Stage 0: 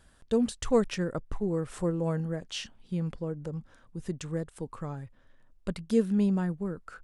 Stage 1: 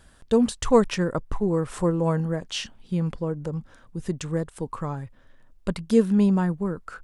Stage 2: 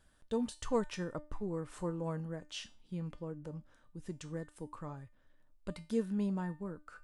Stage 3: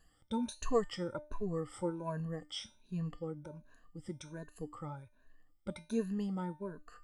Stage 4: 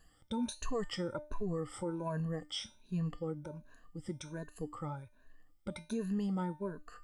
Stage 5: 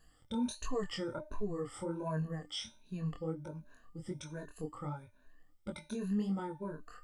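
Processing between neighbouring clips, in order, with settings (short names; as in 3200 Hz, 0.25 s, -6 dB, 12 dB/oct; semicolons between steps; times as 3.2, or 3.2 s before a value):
dynamic EQ 1000 Hz, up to +6 dB, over -54 dBFS, Q 2.9; gain +6 dB
resonator 300 Hz, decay 0.33 s, harmonics all, mix 70%; gain -5 dB
moving spectral ripple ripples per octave 1.5, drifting +1.3 Hz, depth 20 dB; gain -3.5 dB
limiter -31 dBFS, peak gain reduction 11 dB; gain +3 dB
chorus 1.4 Hz, delay 19 ms, depth 6.9 ms; gain +2.5 dB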